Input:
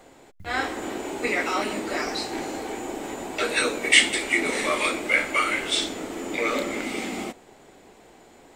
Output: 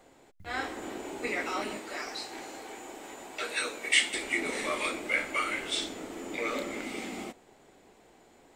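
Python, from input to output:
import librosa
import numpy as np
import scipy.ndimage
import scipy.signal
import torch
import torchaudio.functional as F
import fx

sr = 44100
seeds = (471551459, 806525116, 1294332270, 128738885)

y = fx.low_shelf(x, sr, hz=430.0, db=-10.5, at=(1.77, 4.14))
y = F.gain(torch.from_numpy(y), -7.5).numpy()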